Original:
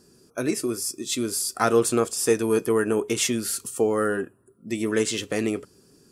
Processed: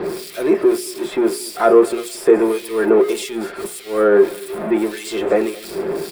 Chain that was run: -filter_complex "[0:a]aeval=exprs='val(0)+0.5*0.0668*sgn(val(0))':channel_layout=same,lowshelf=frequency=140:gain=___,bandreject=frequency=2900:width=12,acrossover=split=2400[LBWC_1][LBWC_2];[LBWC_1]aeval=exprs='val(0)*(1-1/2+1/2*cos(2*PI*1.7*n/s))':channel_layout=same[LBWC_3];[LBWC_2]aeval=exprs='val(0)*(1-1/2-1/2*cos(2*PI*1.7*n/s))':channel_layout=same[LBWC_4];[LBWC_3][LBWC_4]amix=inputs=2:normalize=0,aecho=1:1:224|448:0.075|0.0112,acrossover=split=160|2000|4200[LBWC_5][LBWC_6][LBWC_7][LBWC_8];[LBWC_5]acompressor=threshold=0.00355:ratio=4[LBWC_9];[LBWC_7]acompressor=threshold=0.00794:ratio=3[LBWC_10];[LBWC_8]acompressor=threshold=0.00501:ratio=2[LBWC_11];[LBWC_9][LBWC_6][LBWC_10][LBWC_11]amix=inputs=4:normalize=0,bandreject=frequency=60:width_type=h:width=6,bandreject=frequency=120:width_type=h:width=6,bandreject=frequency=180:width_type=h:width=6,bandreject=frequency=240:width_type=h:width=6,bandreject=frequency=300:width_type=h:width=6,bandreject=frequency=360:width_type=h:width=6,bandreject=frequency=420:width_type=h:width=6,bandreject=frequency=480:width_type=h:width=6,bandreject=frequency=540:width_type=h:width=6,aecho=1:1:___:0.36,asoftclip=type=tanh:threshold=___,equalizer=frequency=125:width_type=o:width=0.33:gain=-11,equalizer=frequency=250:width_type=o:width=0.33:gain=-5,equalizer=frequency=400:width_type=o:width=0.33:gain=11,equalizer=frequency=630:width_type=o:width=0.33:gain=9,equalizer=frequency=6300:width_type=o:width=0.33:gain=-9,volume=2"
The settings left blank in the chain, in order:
-4, 5.7, 0.266